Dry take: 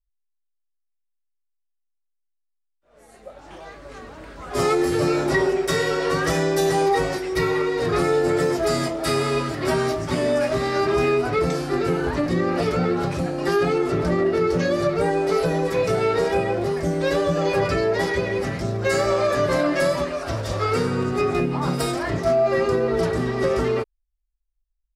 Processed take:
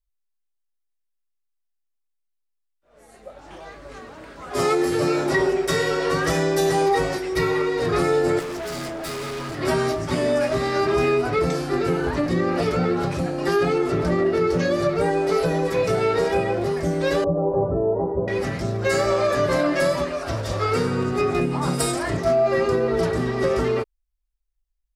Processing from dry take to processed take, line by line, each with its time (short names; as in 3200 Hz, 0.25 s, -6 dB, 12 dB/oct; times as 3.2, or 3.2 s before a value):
3.99–5.39 HPF 120 Hz 6 dB/oct
8.39–9.59 overloaded stage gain 28.5 dB
17.24–18.28 steep low-pass 940 Hz
21.41–22.17 bell 8800 Hz +9.5 dB